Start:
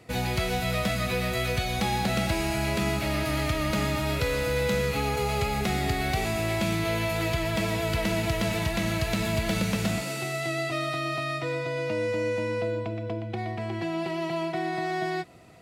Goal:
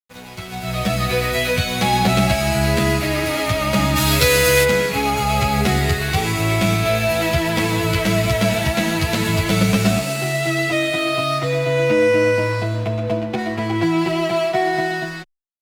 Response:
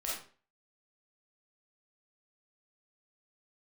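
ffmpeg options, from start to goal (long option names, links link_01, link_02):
-filter_complex "[0:a]dynaudnorm=framelen=170:gausssize=9:maxgain=16.5dB,highpass=frequency=62:width=0.5412,highpass=frequency=62:width=1.3066,aeval=exprs='sgn(val(0))*max(abs(val(0))-0.0299,0)':channel_layout=same,asplit=3[link_01][link_02][link_03];[link_01]afade=type=out:start_time=3.95:duration=0.02[link_04];[link_02]highshelf=frequency=2800:gain=12,afade=type=in:start_time=3.95:duration=0.02,afade=type=out:start_time=4.63:duration=0.02[link_05];[link_03]afade=type=in:start_time=4.63:duration=0.02[link_06];[link_04][link_05][link_06]amix=inputs=3:normalize=0,asplit=2[link_07][link_08];[link_08]adelay=9.7,afreqshift=0.66[link_09];[link_07][link_09]amix=inputs=2:normalize=1"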